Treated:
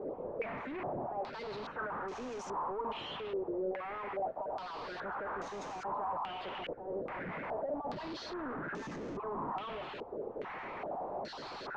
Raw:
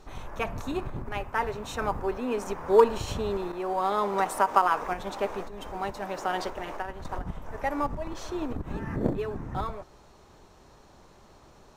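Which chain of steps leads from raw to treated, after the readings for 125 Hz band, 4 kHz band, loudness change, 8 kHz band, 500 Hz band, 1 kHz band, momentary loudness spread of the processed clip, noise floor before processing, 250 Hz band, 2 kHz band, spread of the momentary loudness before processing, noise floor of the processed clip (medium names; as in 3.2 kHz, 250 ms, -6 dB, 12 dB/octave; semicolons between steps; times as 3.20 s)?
-14.0 dB, -4.5 dB, -10.0 dB, -14.0 dB, -9.5 dB, -9.5 dB, 5 LU, -55 dBFS, -9.0 dB, -7.0 dB, 14 LU, -45 dBFS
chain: random holes in the spectrogram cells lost 21%; high-pass 140 Hz 24 dB/octave; reverse; compression 6:1, threshold -40 dBFS, peak gain reduction 25 dB; reverse; peak limiter -40.5 dBFS, peak gain reduction 12.5 dB; overdrive pedal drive 34 dB, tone 1 kHz, clips at -40 dBFS; step-sequenced low-pass 2.4 Hz 490–6400 Hz; trim +4.5 dB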